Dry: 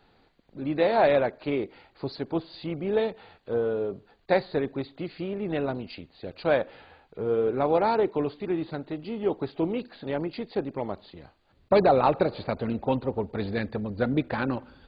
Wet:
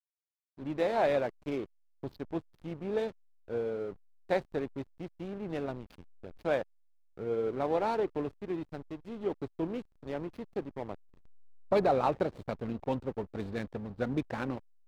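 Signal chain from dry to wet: backlash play -31 dBFS; gain -6.5 dB

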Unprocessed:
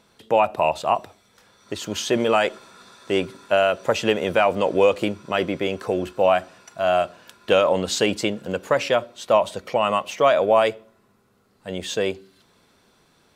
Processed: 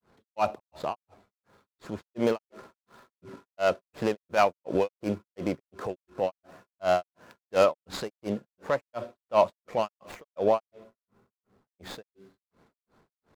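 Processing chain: median filter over 15 samples; transient shaper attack -8 dB, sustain +1 dB; grains 0.248 s, grains 2.8/s, spray 24 ms, pitch spread up and down by 0 st

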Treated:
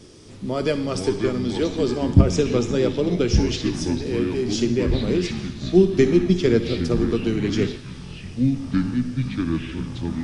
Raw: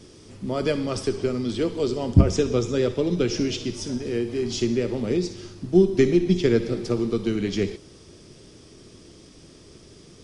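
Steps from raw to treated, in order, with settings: echoes that change speed 0.27 s, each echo -6 st, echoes 3, each echo -6 dB; gain +1.5 dB

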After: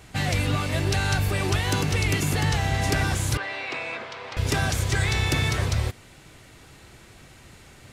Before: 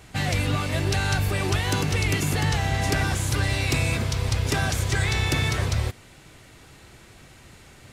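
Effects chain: 3.37–4.37 BPF 560–2500 Hz

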